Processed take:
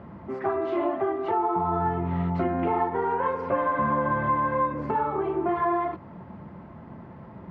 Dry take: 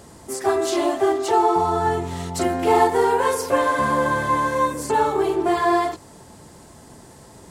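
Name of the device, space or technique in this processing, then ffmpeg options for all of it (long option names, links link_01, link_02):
bass amplifier: -af "acompressor=threshold=-24dB:ratio=3,highpass=67,equalizer=frequency=190:width_type=q:width=4:gain=7,equalizer=frequency=290:width_type=q:width=4:gain=-3,equalizer=frequency=440:width_type=q:width=4:gain=-8,equalizer=frequency=770:width_type=q:width=4:gain=-4,equalizer=frequency=1700:width_type=q:width=4:gain=-6,lowpass=frequency=2000:width=0.5412,lowpass=frequency=2000:width=1.3066,volume=3dB"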